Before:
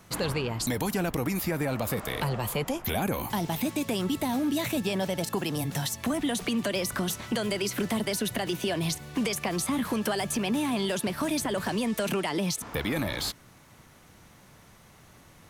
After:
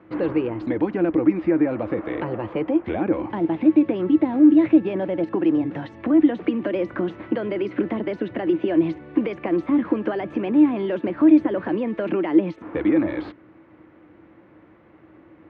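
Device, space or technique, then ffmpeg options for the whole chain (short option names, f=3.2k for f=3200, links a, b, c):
bass cabinet: -af "highpass=79,equalizer=f=140:t=q:w=4:g=-5,equalizer=f=330:t=q:w=4:g=10,equalizer=f=520:t=q:w=4:g=7,lowpass=f=2.3k:w=0.5412,lowpass=f=2.3k:w=1.3066,equalizer=f=310:w=5.5:g=11"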